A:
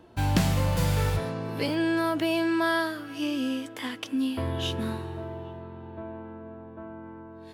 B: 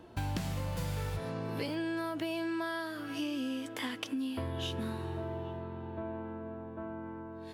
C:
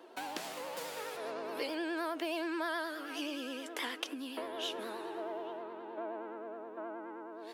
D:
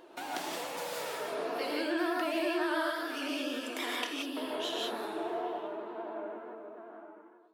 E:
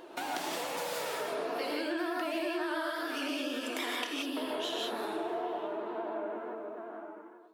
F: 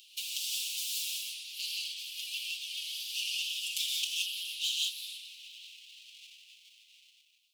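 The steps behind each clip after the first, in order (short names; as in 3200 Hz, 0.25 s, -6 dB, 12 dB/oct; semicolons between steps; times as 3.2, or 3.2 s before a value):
compressor 6:1, threshold -33 dBFS, peak gain reduction 14.5 dB
vibrato 9.5 Hz 86 cents; HPF 340 Hz 24 dB/oct; gain +1 dB
ending faded out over 2.09 s; wow and flutter 94 cents; non-linear reverb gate 0.2 s rising, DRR -2.5 dB
compressor 3:1, threshold -38 dBFS, peak gain reduction 8.5 dB; gain +5 dB
minimum comb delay 5.8 ms; steep high-pass 2700 Hz 72 dB/oct; gain +8.5 dB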